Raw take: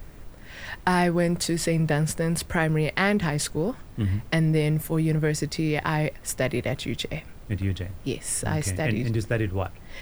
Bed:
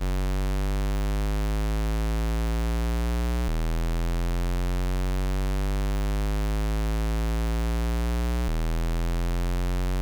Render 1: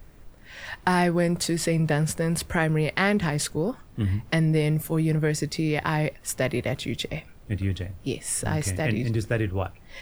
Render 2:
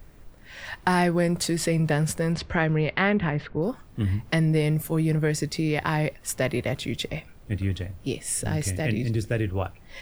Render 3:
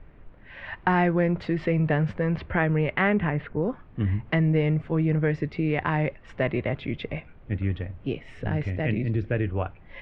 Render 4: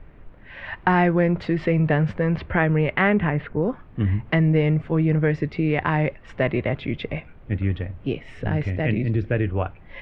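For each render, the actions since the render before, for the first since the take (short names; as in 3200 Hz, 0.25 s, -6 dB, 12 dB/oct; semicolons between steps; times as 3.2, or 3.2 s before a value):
noise print and reduce 6 dB
2.32–3.61 LPF 6000 Hz -> 2300 Hz 24 dB/oct; 8.23–9.49 bell 1100 Hz -7.5 dB 1 oct
LPF 2700 Hz 24 dB/oct
gain +3.5 dB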